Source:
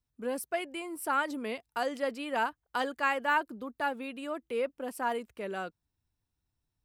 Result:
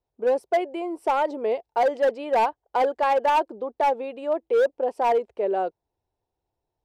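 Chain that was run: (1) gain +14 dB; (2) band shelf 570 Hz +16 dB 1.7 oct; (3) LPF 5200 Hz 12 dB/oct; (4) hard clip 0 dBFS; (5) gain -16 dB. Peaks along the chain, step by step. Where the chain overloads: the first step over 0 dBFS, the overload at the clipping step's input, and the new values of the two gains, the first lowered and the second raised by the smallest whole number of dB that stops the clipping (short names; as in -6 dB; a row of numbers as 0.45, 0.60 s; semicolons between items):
-1.5, +8.0, +8.0, 0.0, -16.0 dBFS; step 2, 8.0 dB; step 1 +6 dB, step 5 -8 dB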